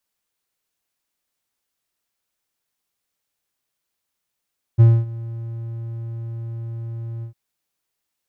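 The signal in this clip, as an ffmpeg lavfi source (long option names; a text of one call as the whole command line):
ffmpeg -f lavfi -i "aevalsrc='0.631*(1-4*abs(mod(115*t+0.25,1)-0.5))':duration=2.553:sample_rate=44100,afade=type=in:duration=0.025,afade=type=out:start_time=0.025:duration=0.245:silence=0.0891,afade=type=out:start_time=2.45:duration=0.103" out.wav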